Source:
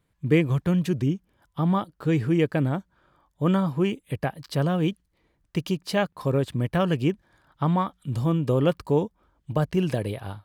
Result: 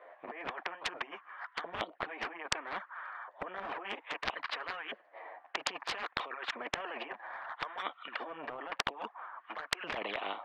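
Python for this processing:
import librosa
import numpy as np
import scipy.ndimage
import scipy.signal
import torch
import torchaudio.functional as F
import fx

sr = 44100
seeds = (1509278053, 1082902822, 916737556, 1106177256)

y = fx.over_compress(x, sr, threshold_db=-29.0, ratio=-0.5)
y = fx.filter_lfo_highpass(y, sr, shape='saw_up', hz=0.61, low_hz=560.0, high_hz=1500.0, q=4.9)
y = fx.cabinet(y, sr, low_hz=280.0, low_slope=24, high_hz=2500.0, hz=(720.0, 1100.0, 1800.0), db=(9, 7, 9))
y = fx.env_flanger(y, sr, rest_ms=11.8, full_db=-18.0)
y = fx.spectral_comp(y, sr, ratio=4.0)
y = y * 10.0 ** (-4.0 / 20.0)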